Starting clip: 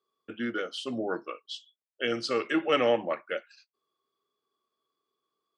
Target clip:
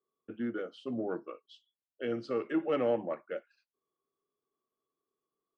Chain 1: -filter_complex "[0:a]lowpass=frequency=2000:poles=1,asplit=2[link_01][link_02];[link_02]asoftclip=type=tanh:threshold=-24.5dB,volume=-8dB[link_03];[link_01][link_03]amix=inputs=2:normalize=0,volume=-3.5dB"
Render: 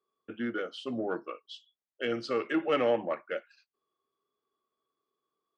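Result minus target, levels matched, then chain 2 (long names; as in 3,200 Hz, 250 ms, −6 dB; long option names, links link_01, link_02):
2,000 Hz band +5.5 dB
-filter_complex "[0:a]lowpass=frequency=510:poles=1,asplit=2[link_01][link_02];[link_02]asoftclip=type=tanh:threshold=-24.5dB,volume=-8dB[link_03];[link_01][link_03]amix=inputs=2:normalize=0,volume=-3.5dB"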